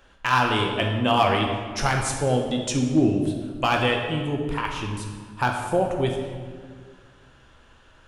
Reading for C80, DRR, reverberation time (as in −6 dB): 5.5 dB, 1.0 dB, 1.7 s